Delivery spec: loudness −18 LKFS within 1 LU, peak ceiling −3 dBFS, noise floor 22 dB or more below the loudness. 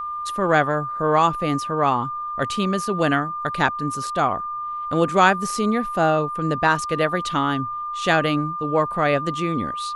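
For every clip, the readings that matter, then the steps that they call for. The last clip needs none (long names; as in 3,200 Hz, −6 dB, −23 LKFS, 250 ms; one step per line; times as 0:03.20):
crackle rate 30 per second; interfering tone 1,200 Hz; level of the tone −26 dBFS; integrated loudness −21.5 LKFS; sample peak −3.0 dBFS; target loudness −18.0 LKFS
→ click removal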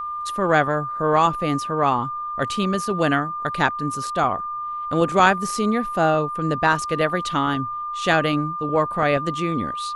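crackle rate 0 per second; interfering tone 1,200 Hz; level of the tone −26 dBFS
→ notch filter 1,200 Hz, Q 30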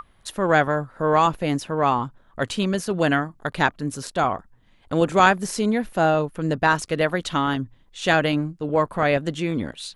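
interfering tone none found; integrated loudness −22.5 LKFS; sample peak −3.5 dBFS; target loudness −18.0 LKFS
→ level +4.5 dB
brickwall limiter −3 dBFS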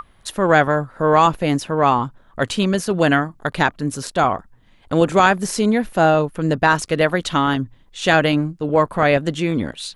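integrated loudness −18.5 LKFS; sample peak −3.0 dBFS; background noise floor −53 dBFS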